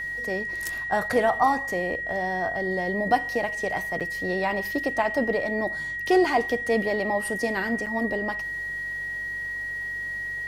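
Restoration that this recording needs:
click removal
hum removal 47.3 Hz, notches 3
notch filter 1,900 Hz, Q 30
repair the gap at 0:04.00/0:07.86, 6.8 ms

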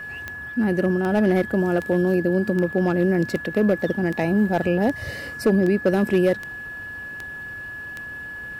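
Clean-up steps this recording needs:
clipped peaks rebuilt −11.5 dBFS
click removal
notch filter 1,700 Hz, Q 30

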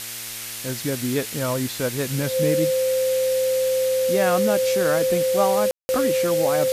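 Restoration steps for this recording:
hum removal 114.4 Hz, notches 22
notch filter 520 Hz, Q 30
ambience match 0:05.71–0:05.89
noise reduction from a noise print 30 dB

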